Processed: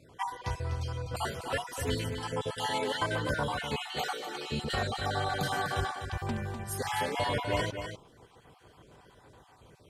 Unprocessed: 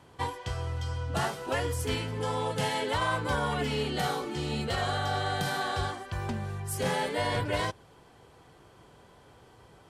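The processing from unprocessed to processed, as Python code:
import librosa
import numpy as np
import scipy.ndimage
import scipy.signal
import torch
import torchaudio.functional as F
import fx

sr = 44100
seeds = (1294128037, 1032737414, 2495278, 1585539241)

y = fx.spec_dropout(x, sr, seeds[0], share_pct=39)
y = fx.highpass(y, sr, hz=540.0, slope=12, at=(3.93, 4.52))
y = y + 10.0 ** (-8.0 / 20.0) * np.pad(y, (int(249 * sr / 1000.0), 0))[:len(y)]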